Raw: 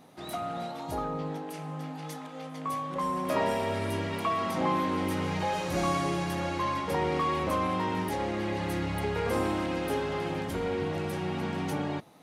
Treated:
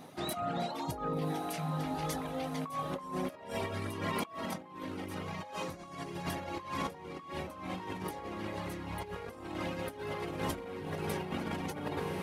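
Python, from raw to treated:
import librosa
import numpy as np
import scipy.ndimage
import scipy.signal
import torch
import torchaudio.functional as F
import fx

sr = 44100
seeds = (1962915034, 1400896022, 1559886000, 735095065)

y = fx.dereverb_blind(x, sr, rt60_s=1.1)
y = fx.echo_diffused(y, sr, ms=1143, feedback_pct=65, wet_db=-10)
y = fx.over_compress(y, sr, threshold_db=-37.0, ratio=-0.5)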